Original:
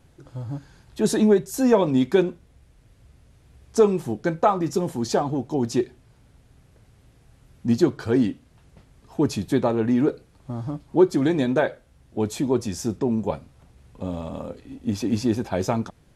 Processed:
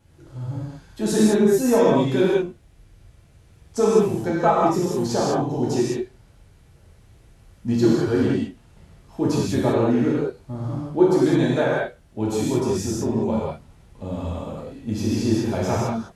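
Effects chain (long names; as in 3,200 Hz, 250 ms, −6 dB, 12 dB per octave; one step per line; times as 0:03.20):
reverb whose tail is shaped and stops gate 230 ms flat, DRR −7 dB
level −5 dB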